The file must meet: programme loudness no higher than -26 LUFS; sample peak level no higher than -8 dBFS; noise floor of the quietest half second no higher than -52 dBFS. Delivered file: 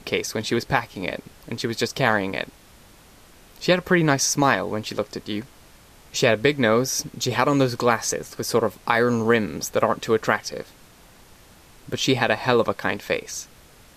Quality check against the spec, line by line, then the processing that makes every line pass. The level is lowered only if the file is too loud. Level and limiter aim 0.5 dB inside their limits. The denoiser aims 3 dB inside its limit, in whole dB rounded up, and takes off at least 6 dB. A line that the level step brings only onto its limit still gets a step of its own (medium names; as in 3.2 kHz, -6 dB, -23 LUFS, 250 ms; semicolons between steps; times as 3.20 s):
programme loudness -22.5 LUFS: fail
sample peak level -4.0 dBFS: fail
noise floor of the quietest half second -50 dBFS: fail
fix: trim -4 dB; peak limiter -8.5 dBFS